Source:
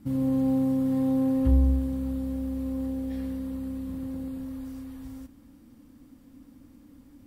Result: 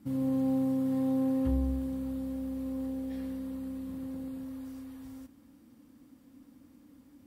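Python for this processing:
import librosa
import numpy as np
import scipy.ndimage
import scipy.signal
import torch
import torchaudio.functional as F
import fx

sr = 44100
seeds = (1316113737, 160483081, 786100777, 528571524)

y = fx.highpass(x, sr, hz=150.0, slope=6)
y = y * librosa.db_to_amplitude(-3.0)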